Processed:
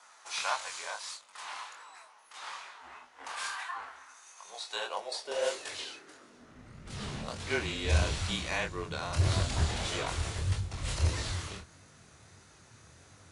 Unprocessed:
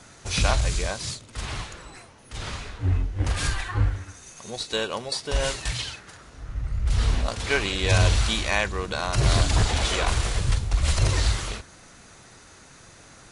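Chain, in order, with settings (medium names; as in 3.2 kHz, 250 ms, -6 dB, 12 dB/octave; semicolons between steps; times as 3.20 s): high-pass sweep 980 Hz -> 120 Hz, 4.49–7.61 s; frequency shift -26 Hz; chorus 1.6 Hz, delay 20 ms, depth 7.5 ms; trim -6 dB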